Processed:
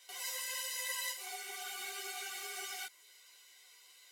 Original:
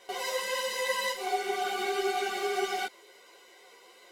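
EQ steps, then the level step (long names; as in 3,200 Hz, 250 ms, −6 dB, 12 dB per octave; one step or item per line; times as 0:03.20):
spectral tilt +2.5 dB per octave
guitar amp tone stack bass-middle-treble 5-5-5
dynamic equaliser 4,000 Hz, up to −5 dB, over −55 dBFS, Q 1.1
0.0 dB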